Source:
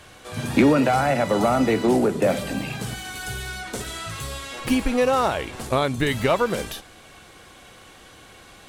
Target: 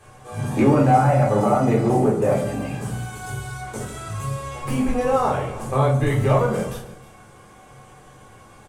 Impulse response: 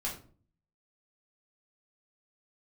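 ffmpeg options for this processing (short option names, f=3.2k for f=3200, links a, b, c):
-filter_complex "[0:a]equalizer=f=125:t=o:w=1:g=12,equalizer=f=500:t=o:w=1:g=7,equalizer=f=1k:t=o:w=1:g=6,equalizer=f=4k:t=o:w=1:g=-6,equalizer=f=8k:t=o:w=1:g=7,aecho=1:1:144|312:0.133|0.112[a];[1:a]atrim=start_sample=2205[b];[a][b]afir=irnorm=-1:irlink=0,volume=-8.5dB"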